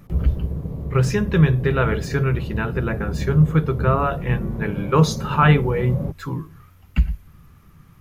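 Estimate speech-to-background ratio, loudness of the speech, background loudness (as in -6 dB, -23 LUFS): 7.0 dB, -21.5 LUFS, -28.5 LUFS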